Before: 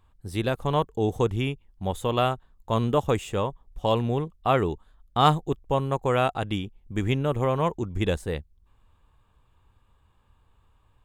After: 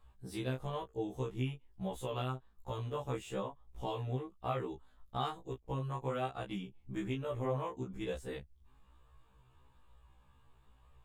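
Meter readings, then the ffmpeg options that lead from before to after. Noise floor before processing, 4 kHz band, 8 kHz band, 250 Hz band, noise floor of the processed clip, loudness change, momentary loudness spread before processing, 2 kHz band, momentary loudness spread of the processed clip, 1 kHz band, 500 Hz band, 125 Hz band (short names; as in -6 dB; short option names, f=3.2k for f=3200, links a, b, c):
-63 dBFS, -14.5 dB, -11.5 dB, -12.5 dB, -66 dBFS, -13.5 dB, 9 LU, -14.0 dB, 7 LU, -15.0 dB, -13.5 dB, -12.0 dB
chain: -af "flanger=delay=17:depth=7.1:speed=1.1,acompressor=threshold=-40dB:ratio=3,afftfilt=real='re*1.73*eq(mod(b,3),0)':imag='im*1.73*eq(mod(b,3),0)':win_size=2048:overlap=0.75,volume=3.5dB"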